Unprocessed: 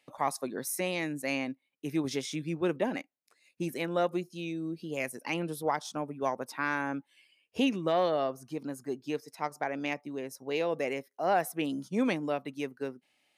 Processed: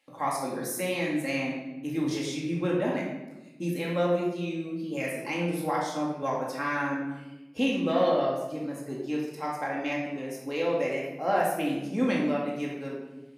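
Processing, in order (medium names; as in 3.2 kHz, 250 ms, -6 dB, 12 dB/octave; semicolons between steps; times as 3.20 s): simulated room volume 510 m³, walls mixed, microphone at 2.2 m; trim -3 dB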